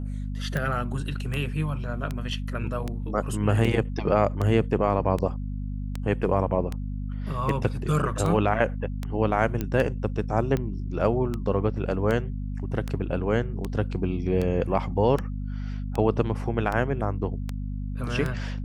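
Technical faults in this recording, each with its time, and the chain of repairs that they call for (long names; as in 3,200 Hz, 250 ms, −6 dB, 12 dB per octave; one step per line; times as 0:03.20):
mains hum 50 Hz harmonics 5 −31 dBFS
scratch tick 78 rpm −16 dBFS
0:09.61: click −14 dBFS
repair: click removal
hum removal 50 Hz, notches 5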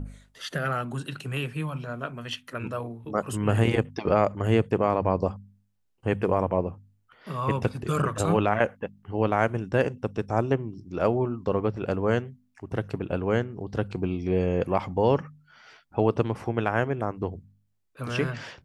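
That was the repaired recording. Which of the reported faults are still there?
none of them is left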